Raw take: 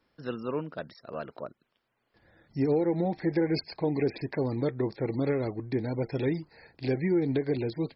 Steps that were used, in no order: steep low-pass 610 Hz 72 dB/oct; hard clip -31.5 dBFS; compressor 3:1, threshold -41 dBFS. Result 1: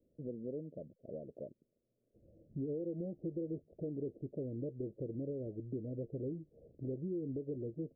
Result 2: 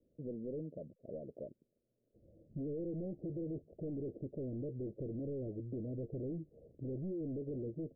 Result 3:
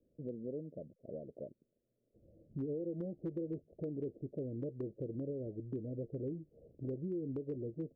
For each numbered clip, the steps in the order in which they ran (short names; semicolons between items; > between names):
compressor > hard clip > steep low-pass; hard clip > compressor > steep low-pass; compressor > steep low-pass > hard clip